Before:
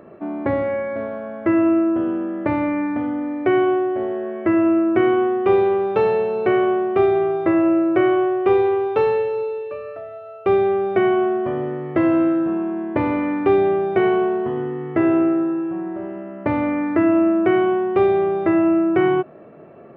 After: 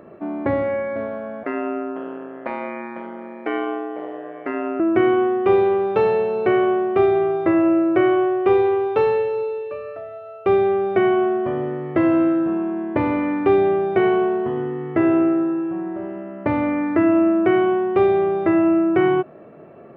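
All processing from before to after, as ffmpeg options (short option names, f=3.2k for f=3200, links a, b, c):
-filter_complex "[0:a]asettb=1/sr,asplit=3[a][b][c];[a]atrim=end=1.434[d];[b]atrim=start=1.43:end=4.8,asetpts=PTS-STARTPTS,afade=t=in:d=0.004:c=qsin,afade=t=out:st=3.366:d=0.004:c=qsin,highpass=470,aeval=exprs='val(0)*sin(2*PI*62*n/s)':c=same[e];[c]atrim=start=4.796[f];[d][e]acrossfade=d=0.004:c1=hsin:c2=qsin[g];[g][f]acrossfade=d=0.004:c1=qsin:c2=hsin"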